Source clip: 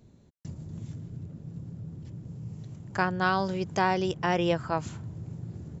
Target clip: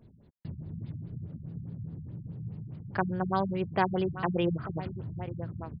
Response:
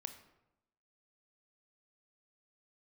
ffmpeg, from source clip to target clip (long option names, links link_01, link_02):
-af "aecho=1:1:891:0.2,afftfilt=real='re*lt(b*sr/1024,210*pow(5100/210,0.5+0.5*sin(2*PI*4.8*pts/sr)))':imag='im*lt(b*sr/1024,210*pow(5100/210,0.5+0.5*sin(2*PI*4.8*pts/sr)))':win_size=1024:overlap=0.75"